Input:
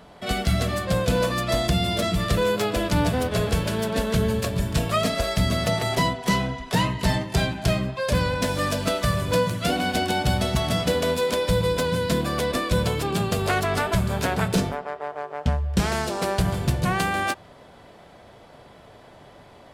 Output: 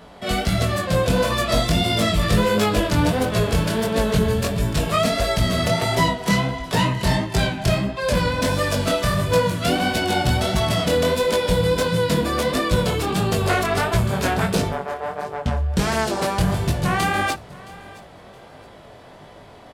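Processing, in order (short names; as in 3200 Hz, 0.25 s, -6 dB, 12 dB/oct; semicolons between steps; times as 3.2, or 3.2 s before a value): soft clip -13.5 dBFS, distortion -21 dB; chorus 1.5 Hz, delay 18 ms, depth 6.7 ms; 1.25–2.8 doubler 19 ms -4 dB; on a send: feedback echo 0.669 s, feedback 30%, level -21 dB; on the sum: gain +7 dB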